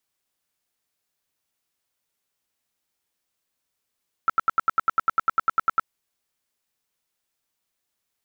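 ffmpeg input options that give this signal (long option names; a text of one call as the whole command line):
ffmpeg -f lavfi -i "aevalsrc='0.188*sin(2*PI*1330*mod(t,0.1))*lt(mod(t,0.1),22/1330)':duration=1.6:sample_rate=44100" out.wav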